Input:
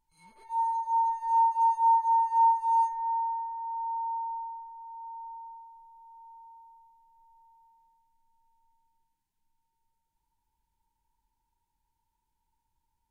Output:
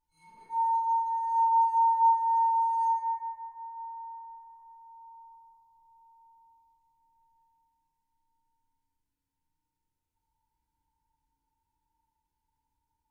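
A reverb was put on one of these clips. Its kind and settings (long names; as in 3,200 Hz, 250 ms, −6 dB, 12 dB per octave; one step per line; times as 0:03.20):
feedback delay network reverb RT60 1.8 s, low-frequency decay 1.4×, high-frequency decay 0.45×, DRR −5.5 dB
level −8.5 dB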